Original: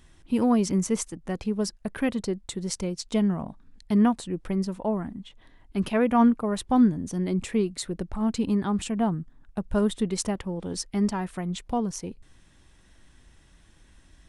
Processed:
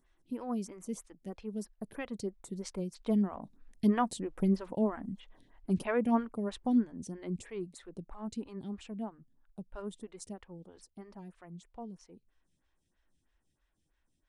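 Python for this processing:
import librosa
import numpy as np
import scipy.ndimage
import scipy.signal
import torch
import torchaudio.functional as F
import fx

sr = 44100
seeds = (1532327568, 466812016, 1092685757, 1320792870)

y = fx.doppler_pass(x, sr, speed_mps=7, closest_m=7.5, pass_at_s=4.55)
y = fx.stagger_phaser(y, sr, hz=3.1)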